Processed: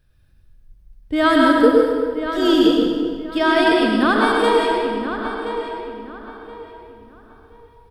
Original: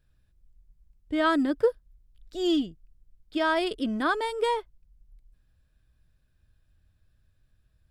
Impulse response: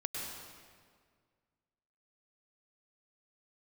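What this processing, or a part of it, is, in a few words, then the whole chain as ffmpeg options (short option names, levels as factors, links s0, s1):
stairwell: -filter_complex "[1:a]atrim=start_sample=2205[s0];[0:a][s0]afir=irnorm=-1:irlink=0,bandreject=f=7200:w=6.1,asettb=1/sr,asplit=3[s1][s2][s3];[s1]atrim=end=1.164[s4];[s2]atrim=start=1.16:end=3.38,asetpts=PTS-STARTPTS,afade=t=in:d=0.004:c=qsin,afade=t=out:st=2.216:d=0.004:c=qsin,highshelf=f=8800:g=8[s5];[s3]atrim=start=3.376[s6];[s4][s5]acrossfade=d=0.004:c1=hsin:c2=qsin[s7];[s7][s6]acrossfade=d=0.004:c1=qsin:c2=hsin,asplit=2[s8][s9];[s9]adelay=1026,lowpass=f=3000:p=1,volume=0.355,asplit=2[s10][s11];[s11]adelay=1026,lowpass=f=3000:p=1,volume=0.29,asplit=2[s12][s13];[s13]adelay=1026,lowpass=f=3000:p=1,volume=0.29[s14];[s8][s10][s12][s14]amix=inputs=4:normalize=0,volume=2.82"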